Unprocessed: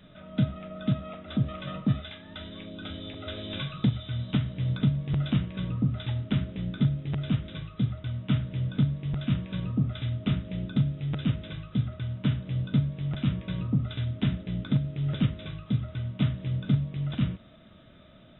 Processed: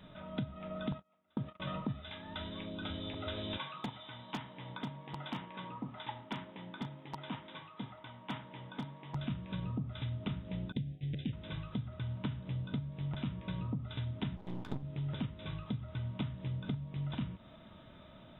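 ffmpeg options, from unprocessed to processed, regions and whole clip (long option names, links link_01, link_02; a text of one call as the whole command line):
ffmpeg -i in.wav -filter_complex "[0:a]asettb=1/sr,asplit=3[link_01][link_02][link_03];[link_01]atrim=end=0.924[link_04];[link_02]atrim=start=0.92:end=1.6,asetpts=PTS-STARTPTS,afade=type=in:duration=0.004:curve=qsin,afade=type=out:start_time=0.676:duration=0.004:curve=qsin,agate=range=-34dB:threshold=-35dB:ratio=16:release=100:detection=peak,highpass=120,equalizer=frequency=1500:width_type=o:width=2.6:gain=3.5[link_05];[link_03]atrim=start=1.596[link_06];[link_04][link_05]acrossfade=duration=0.004:curve1=hsin:curve2=qsin[link_07];[link_07][link_06]acrossfade=duration=0.004:curve1=qsin:curve2=hsin,asettb=1/sr,asplit=3[link_08][link_09][link_10];[link_08]atrim=end=3.574[link_11];[link_09]atrim=start=3.57:end=9.15,asetpts=PTS-STARTPTS,afade=type=in:duration=0.004:curve=qsin,afade=type=out:start_time=5.576:duration=0.004:curve=qsin,highpass=400,equalizer=frequency=410:width_type=q:width=4:gain=-5,equalizer=frequency=610:width_type=q:width=4:gain=-5,equalizer=frequency=910:width_type=q:width=4:gain=5,equalizer=frequency=1400:width_type=q:width=4:gain=-4,equalizer=frequency=2600:width_type=q:width=4:gain=-4,lowpass=frequency=3300:width=0.5412,lowpass=frequency=3300:width=1.3066,aeval=exprs='0.0398*(abs(mod(val(0)/0.0398+3,4)-2)-1)':channel_layout=same[link_12];[link_10]atrim=start=9.146[link_13];[link_11][link_12]acrossfade=duration=0.004:curve1=hsin:curve2=qsin[link_14];[link_14][link_13]acrossfade=duration=0.004:curve1=qsin:curve2=hsin,asettb=1/sr,asplit=3[link_15][link_16][link_17];[link_15]atrim=end=10.724[link_18];[link_16]atrim=start=10.72:end=11.33,asetpts=PTS-STARTPTS,afade=type=in:duration=0.004:curve=qsin,afade=type=out:start_time=0.606:duration=0.004:curve=qsin,agate=range=-33dB:threshold=-32dB:ratio=3:release=100:detection=peak,aeval=exprs='val(0)+0.00398*sin(2*PI*740*n/s)':channel_layout=same,asuperstop=centerf=1000:order=8:qfactor=0.83[link_19];[link_17]atrim=start=11.326[link_20];[link_18][link_19]acrossfade=duration=0.004:curve1=hsin:curve2=qsin[link_21];[link_21][link_20]acrossfade=duration=0.004:curve1=qsin:curve2=hsin,asettb=1/sr,asplit=3[link_22][link_23][link_24];[link_22]atrim=end=14.364[link_25];[link_23]atrim=start=14.36:end=14.83,asetpts=PTS-STARTPTS,afade=type=in:duration=0.004:curve=qsin,afade=type=out:start_time=0.466:duration=0.004:curve=qsin,highshelf=frequency=3300:gain=-9,aeval=exprs='max(val(0),0)':channel_layout=same[link_26];[link_24]atrim=start=14.826[link_27];[link_25][link_26]acrossfade=duration=0.004:curve1=hsin:curve2=qsin[link_28];[link_28][link_27]acrossfade=duration=0.004:curve1=qsin:curve2=hsin,acompressor=threshold=-33dB:ratio=6,equalizer=frequency=930:width=4:gain=11.5,volume=-2dB" out.wav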